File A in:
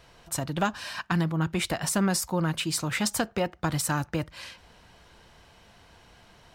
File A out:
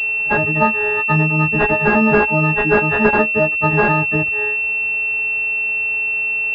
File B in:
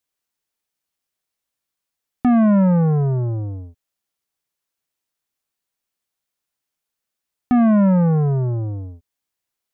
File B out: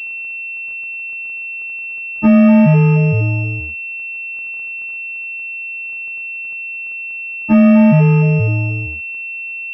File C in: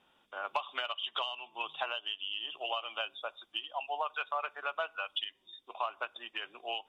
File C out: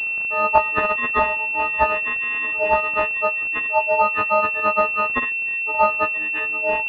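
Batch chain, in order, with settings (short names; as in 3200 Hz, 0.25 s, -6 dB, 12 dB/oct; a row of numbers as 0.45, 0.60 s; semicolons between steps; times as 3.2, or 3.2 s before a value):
frequency quantiser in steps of 6 st; crackle 170/s -42 dBFS; pulse-width modulation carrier 2700 Hz; normalise peaks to -2 dBFS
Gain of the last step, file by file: +9.0, +5.5, +15.0 dB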